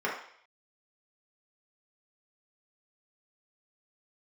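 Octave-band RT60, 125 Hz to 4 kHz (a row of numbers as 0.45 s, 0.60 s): 0.30 s, 0.45 s, 0.60 s, 0.60 s, 0.65 s, 0.70 s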